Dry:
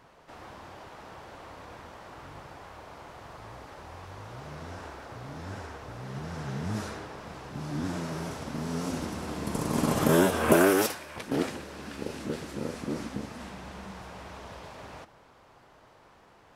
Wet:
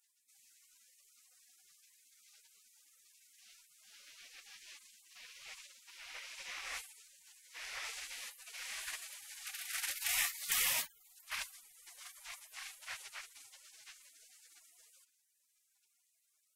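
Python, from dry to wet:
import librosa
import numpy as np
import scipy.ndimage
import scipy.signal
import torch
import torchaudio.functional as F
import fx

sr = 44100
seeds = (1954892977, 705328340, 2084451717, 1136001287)

y = fx.spec_gate(x, sr, threshold_db=-30, keep='weak')
y = fx.band_shelf(y, sr, hz=1100.0, db=8.0, octaves=2.7)
y = F.gain(torch.from_numpy(y), 3.0).numpy()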